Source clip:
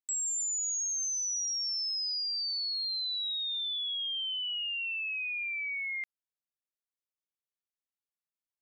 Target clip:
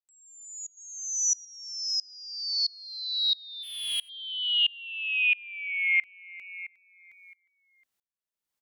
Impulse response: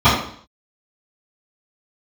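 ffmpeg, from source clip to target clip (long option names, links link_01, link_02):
-filter_complex "[0:a]aecho=1:1:359|718|1077|1436|1795:0.299|0.146|0.0717|0.0351|0.0172,asplit=3[link_01][link_02][link_03];[link_01]afade=type=out:start_time=3.62:duration=0.02[link_04];[link_02]aeval=exprs='0.0178*(abs(mod(val(0)/0.0178+3,4)-2)-1)':channel_layout=same,afade=type=in:start_time=3.62:duration=0.02,afade=type=out:start_time=4.08:duration=0.02[link_05];[link_03]afade=type=in:start_time=4.08:duration=0.02[link_06];[link_04][link_05][link_06]amix=inputs=3:normalize=0,acrossover=split=3900[link_07][link_08];[link_08]acompressor=threshold=-46dB:ratio=4:attack=1:release=60[link_09];[link_07][link_09]amix=inputs=2:normalize=0,asettb=1/sr,asplit=3[link_10][link_11][link_12];[link_10]atrim=end=0.774[link_13];[link_11]atrim=start=0.77:end=1.45,asetpts=PTS-STARTPTS,afade=type=in:duration=0.004:curve=qsin,afade=type=out:start_time=0.676:duration=0.004:curve=qsin,equalizer=frequency=7000:width=1.2:gain=9[link_14];[link_12]atrim=start=1.446[link_15];[link_13][link_14]acrossfade=duration=0.004:curve1=hsin:curve2=qsin[link_16];[link_16][link_15]acrossfade=duration=0.004:curve1=qsin:curve2=hsin,dynaudnorm=framelen=320:gausssize=7:maxgain=9dB,aeval=exprs='val(0)*pow(10,-28*if(lt(mod(-1.5*n/s,1),2*abs(-1.5)/1000),1-mod(-1.5*n/s,1)/(2*abs(-1.5)/1000),(mod(-1.5*n/s,1)-2*abs(-1.5)/1000)/(1-2*abs(-1.5)/1000))/20)':channel_layout=same,volume=5.5dB"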